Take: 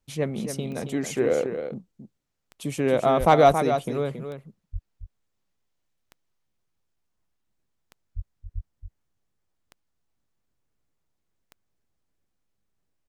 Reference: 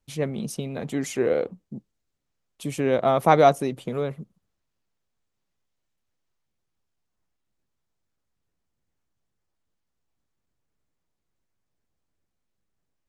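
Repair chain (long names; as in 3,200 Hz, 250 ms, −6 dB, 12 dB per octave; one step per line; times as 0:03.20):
clipped peaks rebuilt −5.5 dBFS
click removal
high-pass at the plosives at 0:03.19/0:04.72/0:08.15/0:08.54
echo removal 274 ms −8.5 dB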